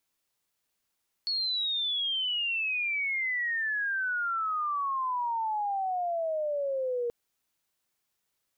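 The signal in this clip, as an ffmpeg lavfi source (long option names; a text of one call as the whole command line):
ffmpeg -f lavfi -i "aevalsrc='pow(10,(-27-0.5*t/5.83)/20)*sin(2*PI*4400*5.83/log(470/4400)*(exp(log(470/4400)*t/5.83)-1))':duration=5.83:sample_rate=44100" out.wav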